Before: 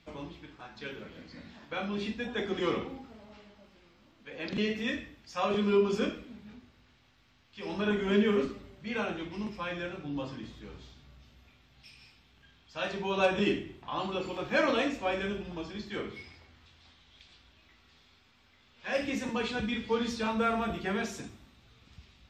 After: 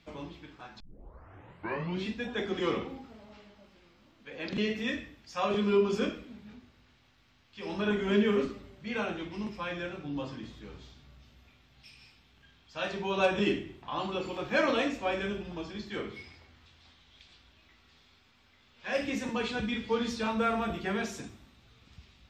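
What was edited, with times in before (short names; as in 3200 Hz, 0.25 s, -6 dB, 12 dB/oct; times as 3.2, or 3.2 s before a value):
0.8 tape start 1.29 s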